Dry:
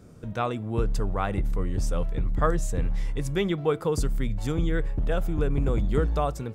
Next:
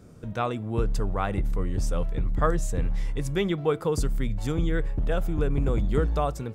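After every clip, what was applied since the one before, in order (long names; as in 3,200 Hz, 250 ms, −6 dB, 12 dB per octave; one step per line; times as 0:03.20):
no processing that can be heard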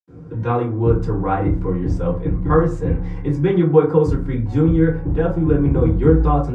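head-to-tape spacing loss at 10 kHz 21 dB
convolution reverb RT60 0.40 s, pre-delay 76 ms
level −1 dB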